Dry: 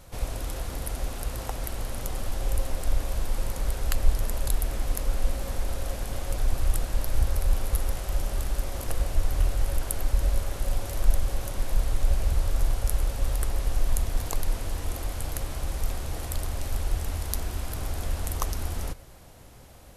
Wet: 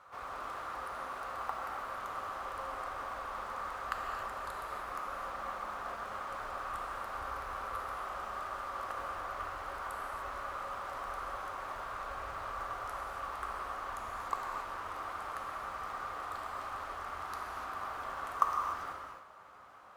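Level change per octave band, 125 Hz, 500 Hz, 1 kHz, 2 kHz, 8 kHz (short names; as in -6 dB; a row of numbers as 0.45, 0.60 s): -26.5, -7.0, +5.5, 0.0, -19.5 dB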